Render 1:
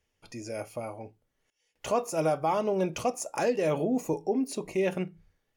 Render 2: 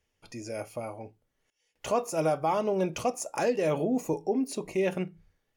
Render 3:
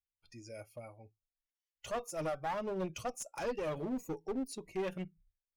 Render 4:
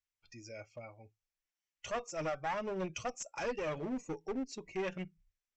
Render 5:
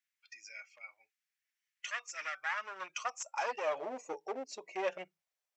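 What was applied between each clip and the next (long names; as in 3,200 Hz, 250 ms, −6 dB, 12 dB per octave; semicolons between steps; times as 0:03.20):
no processing that can be heard
spectral dynamics exaggerated over time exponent 1.5; asymmetric clip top −32.5 dBFS; level −5 dB
Chebyshev low-pass with heavy ripple 7,800 Hz, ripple 6 dB; level +5 dB
high-pass filter sweep 1,800 Hz → 610 Hz, 0:02.24–0:03.95; level +1 dB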